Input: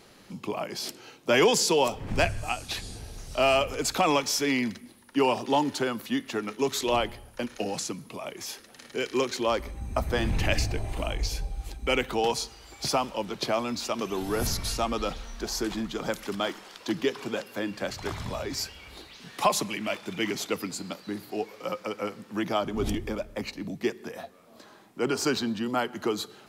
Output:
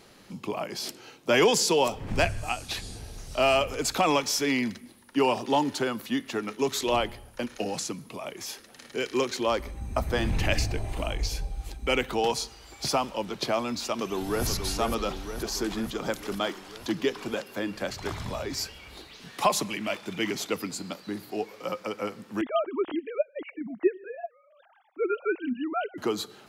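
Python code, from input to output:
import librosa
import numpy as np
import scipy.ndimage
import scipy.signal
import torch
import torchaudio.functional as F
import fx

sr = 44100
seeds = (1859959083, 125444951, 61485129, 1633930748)

y = fx.echo_throw(x, sr, start_s=13.96, length_s=0.5, ms=480, feedback_pct=70, wet_db=-6.5)
y = fx.sine_speech(y, sr, at=(22.41, 25.98))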